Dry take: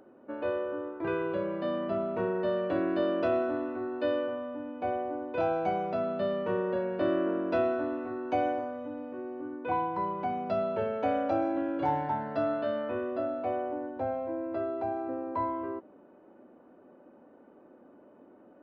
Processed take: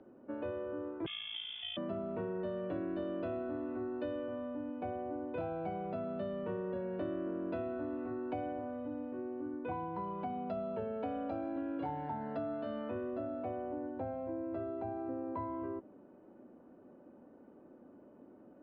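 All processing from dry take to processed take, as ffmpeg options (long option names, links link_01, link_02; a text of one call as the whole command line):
ffmpeg -i in.wav -filter_complex "[0:a]asettb=1/sr,asplit=3[link_01][link_02][link_03];[link_01]atrim=end=1.064[link_04];[link_02]atrim=start=1.06:end=1.77,asetpts=PTS-STARTPTS,afade=type=in:duration=0.004:curve=qsin,afade=type=out:start_time=0.706:duration=0.004:curve=qsin,tremolo=f=56:d=0.71,acrusher=bits=9:dc=4:mix=0:aa=0.000001,lowpass=frequency=3100:width_type=q:width=0.5098,lowpass=frequency=3100:width_type=q:width=0.6013,lowpass=frequency=3100:width_type=q:width=0.9,lowpass=frequency=3100:width_type=q:width=2.563,afreqshift=-3700[link_05];[link_03]atrim=start=1.766[link_06];[link_04][link_05]acrossfade=duration=0.004:curve1=hsin:curve2=qsin[link_07];[link_07][link_06]acrossfade=duration=0.004:curve1=qsin:curve2=hsin,asettb=1/sr,asplit=3[link_08][link_09][link_10];[link_08]atrim=end=9.964[link_11];[link_09]atrim=start=9.96:end=12.91,asetpts=PTS-STARTPTS,afade=type=in:duration=0.004:curve=qsin,afade=type=out:start_time=2.946:duration=0.004:curve=qsin,bass=frequency=250:gain=-3,treble=frequency=4000:gain=7,aecho=1:1:4.3:0.36,atrim=end_sample=130095[link_12];[link_10]atrim=start=12.906[link_13];[link_11][link_12]acrossfade=duration=0.004:curve1=hsin:curve2=qsin[link_14];[link_14][link_13]acrossfade=duration=0.004:curve1=qsin:curve2=hsin,lowshelf=frequency=310:gain=11,acrossover=split=85|220[link_15][link_16][link_17];[link_15]acompressor=threshold=-53dB:ratio=4[link_18];[link_16]acompressor=threshold=-41dB:ratio=4[link_19];[link_17]acompressor=threshold=-31dB:ratio=4[link_20];[link_18][link_19][link_20]amix=inputs=3:normalize=0,lowpass=frequency=4000:width=0.5412,lowpass=frequency=4000:width=1.3066,volume=-6.5dB" out.wav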